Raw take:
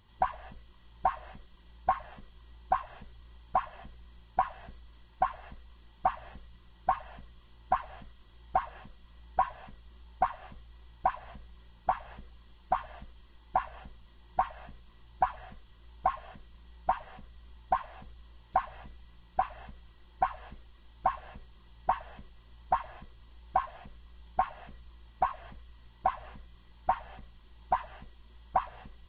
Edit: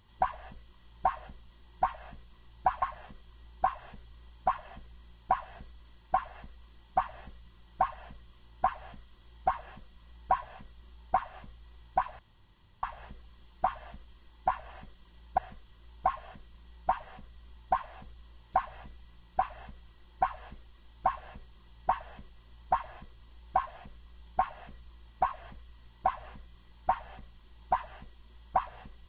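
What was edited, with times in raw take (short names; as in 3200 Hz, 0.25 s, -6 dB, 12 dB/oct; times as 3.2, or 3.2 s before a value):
1.26–1.9 swap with 13.82–15.38
11.27–11.91 room tone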